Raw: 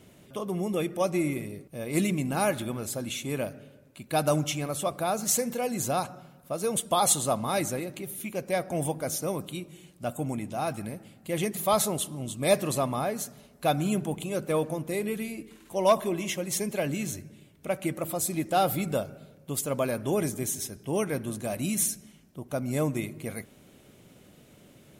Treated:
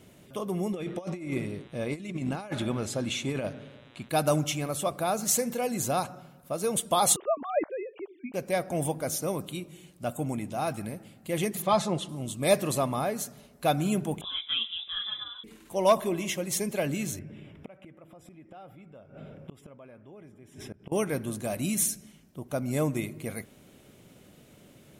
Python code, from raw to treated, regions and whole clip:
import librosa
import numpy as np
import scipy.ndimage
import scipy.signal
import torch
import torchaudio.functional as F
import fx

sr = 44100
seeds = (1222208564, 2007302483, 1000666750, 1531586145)

y = fx.lowpass(x, sr, hz=6400.0, slope=12, at=(0.72, 4.08), fade=0.02)
y = fx.dmg_buzz(y, sr, base_hz=120.0, harmonics=33, level_db=-62.0, tilt_db=-1, odd_only=False, at=(0.72, 4.08), fade=0.02)
y = fx.over_compress(y, sr, threshold_db=-31.0, ratio=-0.5, at=(0.72, 4.08), fade=0.02)
y = fx.chain(y, sr, fx.sine_speech(),
    fx.air_absorb(metres=500.0), at=(7.16, 8.34))
y = fx.chain(y, sr, fx.highpass(hz=42.0, slope=12),
    fx.air_absorb(metres=110.0),
    fx.comb(ms=5.8, depth=0.56), at=(11.62, 12.09))
y = fx.chain(y, sr, fx.peak_eq(hz=84.0, db=-12.5, octaves=1.1),
    fx.freq_invert(carrier_hz=3700),
    fx.detune_double(cents=11), at=(14.21, 15.44))
y = fx.chain(y, sr, fx.savgol(points=25),
    fx.gate_flip(shuts_db=-30.0, range_db=-31),
    fx.env_flatten(amount_pct=50), at=(17.19, 20.92))